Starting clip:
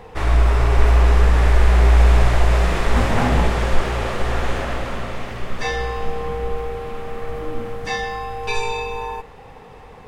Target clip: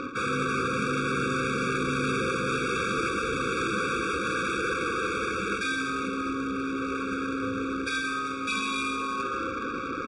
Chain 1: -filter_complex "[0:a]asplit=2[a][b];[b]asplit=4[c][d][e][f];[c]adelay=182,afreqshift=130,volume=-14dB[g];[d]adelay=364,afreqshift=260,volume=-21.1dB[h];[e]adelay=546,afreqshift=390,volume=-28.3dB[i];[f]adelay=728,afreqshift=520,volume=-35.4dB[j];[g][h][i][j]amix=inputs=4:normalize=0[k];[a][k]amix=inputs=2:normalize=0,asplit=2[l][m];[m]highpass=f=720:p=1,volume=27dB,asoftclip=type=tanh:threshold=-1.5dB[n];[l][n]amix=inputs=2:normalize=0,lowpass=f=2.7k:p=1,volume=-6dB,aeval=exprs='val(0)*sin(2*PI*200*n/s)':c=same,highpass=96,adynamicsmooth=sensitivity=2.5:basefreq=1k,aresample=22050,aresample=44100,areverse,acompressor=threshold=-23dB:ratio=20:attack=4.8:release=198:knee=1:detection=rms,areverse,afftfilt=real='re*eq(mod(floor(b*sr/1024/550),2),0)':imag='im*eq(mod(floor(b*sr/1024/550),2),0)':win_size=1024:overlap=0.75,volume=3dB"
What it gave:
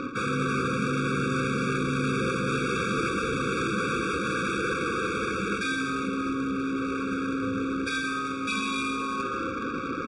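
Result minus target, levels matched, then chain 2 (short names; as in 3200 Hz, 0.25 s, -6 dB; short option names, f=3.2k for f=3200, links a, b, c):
125 Hz band +4.0 dB
-filter_complex "[0:a]asplit=2[a][b];[b]asplit=4[c][d][e][f];[c]adelay=182,afreqshift=130,volume=-14dB[g];[d]adelay=364,afreqshift=260,volume=-21.1dB[h];[e]adelay=546,afreqshift=390,volume=-28.3dB[i];[f]adelay=728,afreqshift=520,volume=-35.4dB[j];[g][h][i][j]amix=inputs=4:normalize=0[k];[a][k]amix=inputs=2:normalize=0,asplit=2[l][m];[m]highpass=f=720:p=1,volume=27dB,asoftclip=type=tanh:threshold=-1.5dB[n];[l][n]amix=inputs=2:normalize=0,lowpass=f=2.7k:p=1,volume=-6dB,aeval=exprs='val(0)*sin(2*PI*200*n/s)':c=same,highpass=96,equalizer=f=170:w=0.91:g=-6.5,adynamicsmooth=sensitivity=2.5:basefreq=1k,aresample=22050,aresample=44100,areverse,acompressor=threshold=-23dB:ratio=20:attack=4.8:release=198:knee=1:detection=rms,areverse,afftfilt=real='re*eq(mod(floor(b*sr/1024/550),2),0)':imag='im*eq(mod(floor(b*sr/1024/550),2),0)':win_size=1024:overlap=0.75,volume=3dB"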